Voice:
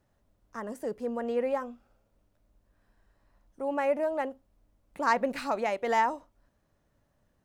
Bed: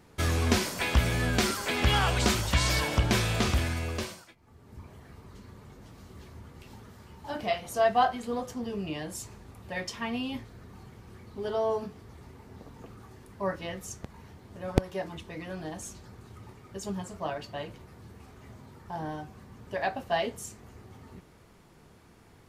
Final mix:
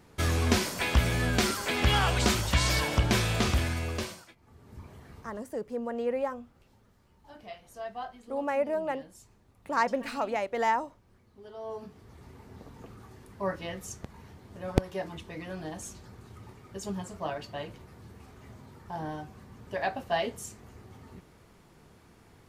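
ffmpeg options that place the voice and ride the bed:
-filter_complex "[0:a]adelay=4700,volume=-1dB[a];[1:a]volume=14.5dB,afade=t=out:st=5.19:d=0.27:silence=0.177828,afade=t=in:st=11.55:d=0.82:silence=0.188365[b];[a][b]amix=inputs=2:normalize=0"

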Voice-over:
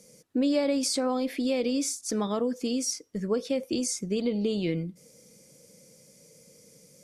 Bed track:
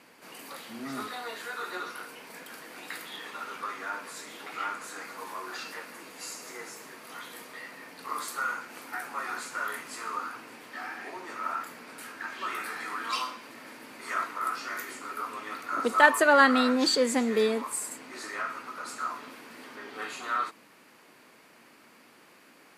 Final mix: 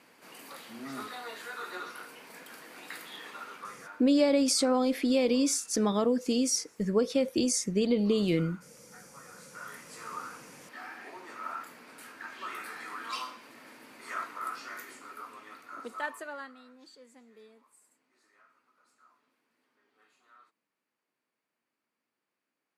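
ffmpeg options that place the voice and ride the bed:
-filter_complex "[0:a]adelay=3650,volume=1.5dB[a];[1:a]volume=9dB,afade=t=out:st=3.3:d=0.77:silence=0.188365,afade=t=in:st=9.33:d=0.87:silence=0.237137,afade=t=out:st=14.46:d=2.09:silence=0.0562341[b];[a][b]amix=inputs=2:normalize=0"

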